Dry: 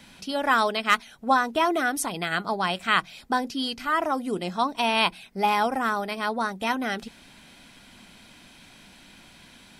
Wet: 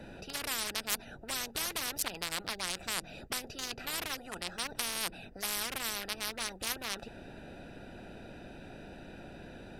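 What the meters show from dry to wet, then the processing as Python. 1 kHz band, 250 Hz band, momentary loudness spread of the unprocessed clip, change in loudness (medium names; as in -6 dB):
-19.5 dB, -16.5 dB, 6 LU, -10.5 dB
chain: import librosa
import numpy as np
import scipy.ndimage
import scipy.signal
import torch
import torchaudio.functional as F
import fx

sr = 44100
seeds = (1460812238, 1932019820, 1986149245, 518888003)

y = fx.wiener(x, sr, points=41)
y = fx.peak_eq(y, sr, hz=13000.0, db=4.5, octaves=0.48)
y = fx.spectral_comp(y, sr, ratio=10.0)
y = y * 10.0 ** (-6.0 / 20.0)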